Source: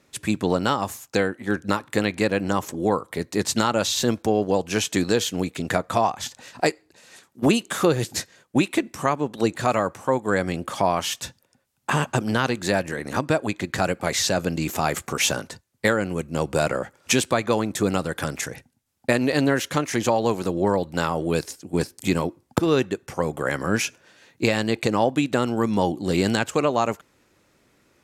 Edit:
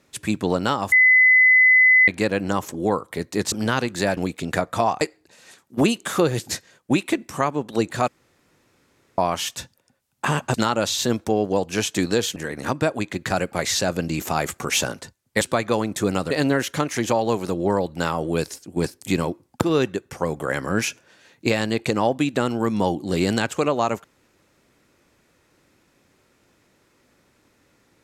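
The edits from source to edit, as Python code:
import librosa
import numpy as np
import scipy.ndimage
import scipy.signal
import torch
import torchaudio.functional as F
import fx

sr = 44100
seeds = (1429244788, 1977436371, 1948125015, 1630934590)

y = fx.edit(x, sr, fx.bleep(start_s=0.92, length_s=1.16, hz=2020.0, db=-10.5),
    fx.swap(start_s=3.52, length_s=1.82, other_s=12.19, other_length_s=0.65),
    fx.cut(start_s=6.18, length_s=0.48),
    fx.room_tone_fill(start_s=9.73, length_s=1.1),
    fx.cut(start_s=15.89, length_s=1.31),
    fx.cut(start_s=18.1, length_s=1.18), tone=tone)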